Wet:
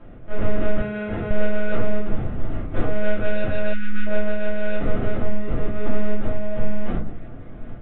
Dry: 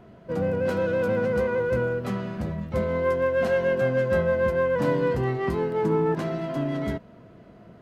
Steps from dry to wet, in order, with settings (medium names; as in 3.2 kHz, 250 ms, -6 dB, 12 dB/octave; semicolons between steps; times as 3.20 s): square wave that keeps the level; echo whose repeats swap between lows and highs 141 ms, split 1.3 kHz, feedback 54%, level -10 dB; monotone LPC vocoder at 8 kHz 210 Hz; low-pass 1.8 kHz 12 dB/octave; peaking EQ 400 Hz -2.5 dB; band-stop 970 Hz, Q 6.3; simulated room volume 130 m³, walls furnished, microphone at 2.8 m; level rider; 0.81–1.31 s: comb of notches 600 Hz; 3.73–4.07 s: spectral selection erased 390–1100 Hz; trim -5.5 dB